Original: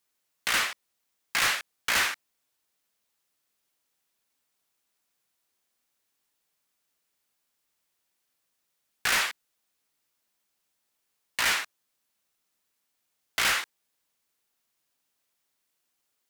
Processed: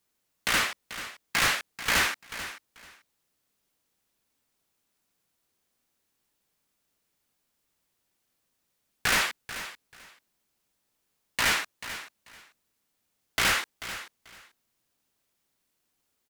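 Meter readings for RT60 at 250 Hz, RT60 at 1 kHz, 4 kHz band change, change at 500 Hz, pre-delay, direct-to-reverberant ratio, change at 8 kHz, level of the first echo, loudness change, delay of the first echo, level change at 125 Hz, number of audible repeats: no reverb, no reverb, +0.5 dB, +4.0 dB, no reverb, no reverb, 0.0 dB, -13.0 dB, -1.0 dB, 438 ms, +9.0 dB, 2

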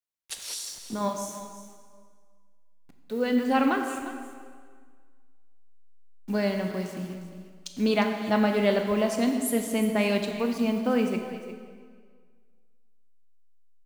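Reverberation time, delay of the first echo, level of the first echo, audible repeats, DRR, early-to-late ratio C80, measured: 1.8 s, 354 ms, -14.0 dB, 1, 4.0 dB, 6.0 dB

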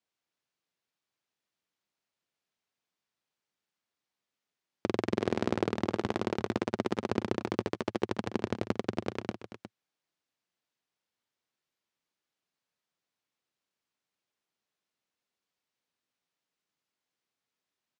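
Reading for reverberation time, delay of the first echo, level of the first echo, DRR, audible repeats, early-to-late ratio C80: no reverb, 230 ms, -15.0 dB, no reverb, 2, no reverb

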